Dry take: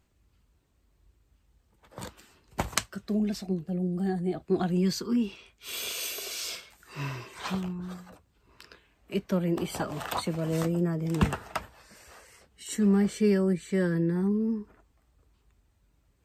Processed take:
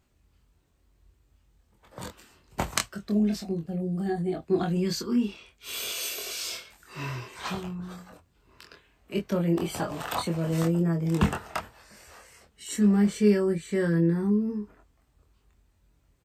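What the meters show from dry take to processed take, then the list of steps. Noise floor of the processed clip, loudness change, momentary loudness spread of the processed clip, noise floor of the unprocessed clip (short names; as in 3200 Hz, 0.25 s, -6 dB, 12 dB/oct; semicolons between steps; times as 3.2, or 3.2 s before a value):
-67 dBFS, +2.0 dB, 16 LU, -69 dBFS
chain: doubler 24 ms -4 dB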